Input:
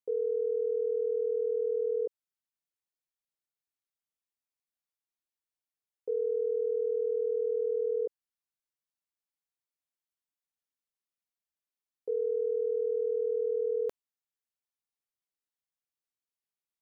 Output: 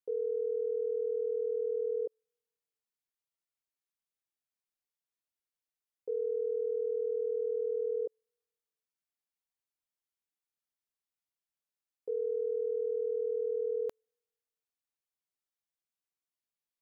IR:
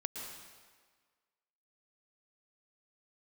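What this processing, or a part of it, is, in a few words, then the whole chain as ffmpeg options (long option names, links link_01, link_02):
keyed gated reverb: -filter_complex "[0:a]asplit=3[link_01][link_02][link_03];[1:a]atrim=start_sample=2205[link_04];[link_02][link_04]afir=irnorm=-1:irlink=0[link_05];[link_03]apad=whole_len=741549[link_06];[link_05][link_06]sidechaingate=range=-49dB:threshold=-25dB:ratio=16:detection=peak,volume=-1dB[link_07];[link_01][link_07]amix=inputs=2:normalize=0,volume=-3dB"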